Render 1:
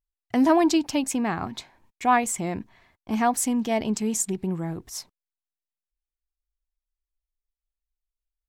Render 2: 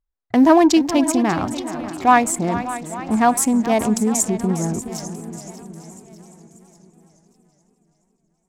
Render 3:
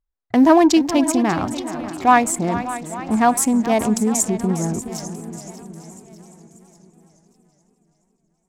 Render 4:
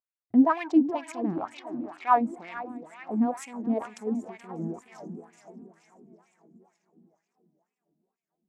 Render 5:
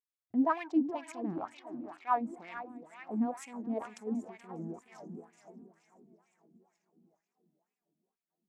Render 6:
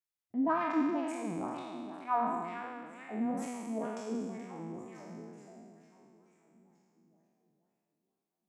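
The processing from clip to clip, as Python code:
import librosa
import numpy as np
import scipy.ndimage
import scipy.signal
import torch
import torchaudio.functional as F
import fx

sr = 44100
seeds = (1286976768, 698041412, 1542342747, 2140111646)

y1 = fx.wiener(x, sr, points=15)
y1 = fx.echo_feedback(y1, sr, ms=590, feedback_pct=47, wet_db=-15.0)
y1 = fx.echo_warbled(y1, sr, ms=423, feedback_pct=57, rate_hz=2.8, cents=135, wet_db=-13.5)
y1 = F.gain(torch.from_numpy(y1), 7.0).numpy()
y2 = y1
y3 = fx.wah_lfo(y2, sr, hz=2.1, low_hz=230.0, high_hz=2500.0, q=3.3)
y3 = F.gain(torch.from_numpy(y3), -2.0).numpy()
y4 = fx.am_noise(y3, sr, seeds[0], hz=5.7, depth_pct=65)
y4 = F.gain(torch.from_numpy(y4), -3.5).numpy()
y5 = fx.spec_trails(y4, sr, decay_s=1.6)
y5 = F.gain(torch.from_numpy(y5), -4.5).numpy()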